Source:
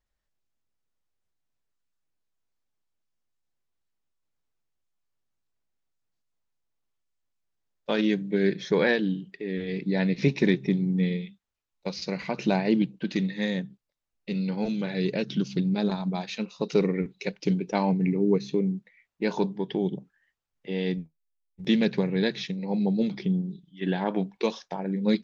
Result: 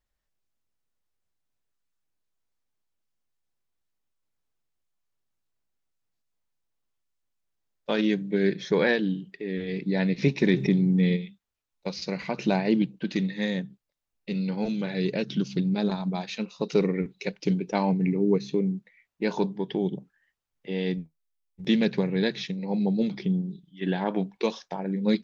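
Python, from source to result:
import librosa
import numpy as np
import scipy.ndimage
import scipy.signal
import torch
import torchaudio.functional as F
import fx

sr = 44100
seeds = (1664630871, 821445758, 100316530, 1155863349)

y = fx.env_flatten(x, sr, amount_pct=50, at=(10.51, 11.15), fade=0.02)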